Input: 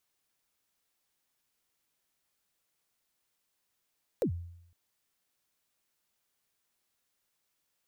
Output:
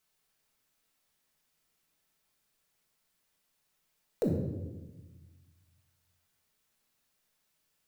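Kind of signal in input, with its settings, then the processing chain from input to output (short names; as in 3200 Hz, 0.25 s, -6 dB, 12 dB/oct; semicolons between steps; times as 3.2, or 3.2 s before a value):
kick drum length 0.51 s, from 580 Hz, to 86 Hz, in 91 ms, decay 0.76 s, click on, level -23.5 dB
shoebox room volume 590 m³, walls mixed, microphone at 1.5 m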